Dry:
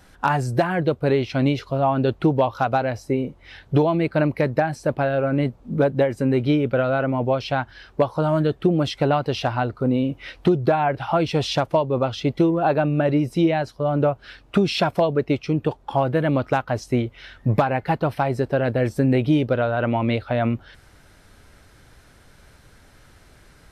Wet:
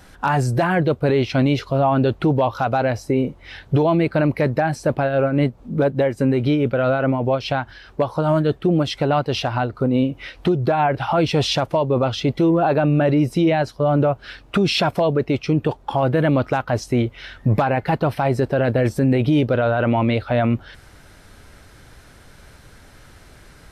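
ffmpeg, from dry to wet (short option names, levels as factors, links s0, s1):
-filter_complex "[0:a]asplit=3[s0][s1][s2];[s0]afade=t=out:st=4.97:d=0.02[s3];[s1]tremolo=f=4.8:d=0.45,afade=t=in:st=4.97:d=0.02,afade=t=out:st=10.9:d=0.02[s4];[s2]afade=t=in:st=10.9:d=0.02[s5];[s3][s4][s5]amix=inputs=3:normalize=0,alimiter=limit=0.178:level=0:latency=1:release=10,volume=1.78"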